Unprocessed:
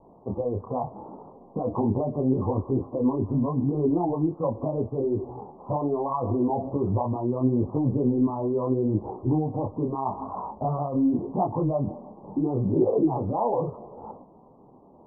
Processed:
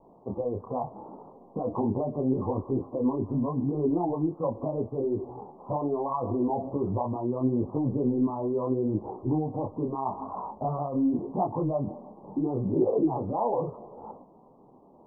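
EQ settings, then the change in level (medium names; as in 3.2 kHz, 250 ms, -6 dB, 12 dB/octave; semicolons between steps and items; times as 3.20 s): peaking EQ 73 Hz -5.5 dB 1.7 oct; -2.0 dB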